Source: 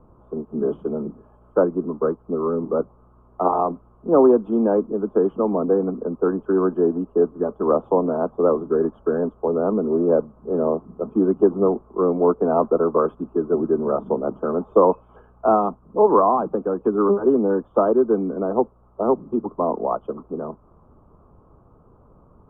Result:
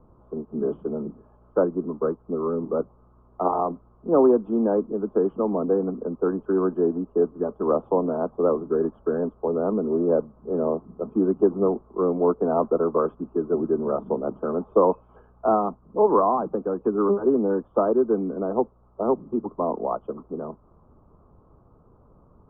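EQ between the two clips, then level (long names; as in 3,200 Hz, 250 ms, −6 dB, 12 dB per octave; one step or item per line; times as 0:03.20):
high-frequency loss of the air 280 metres
−2.5 dB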